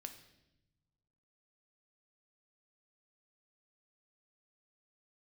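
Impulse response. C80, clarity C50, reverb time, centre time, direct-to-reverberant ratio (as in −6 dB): 12.5 dB, 10.0 dB, 0.90 s, 13 ms, 6.0 dB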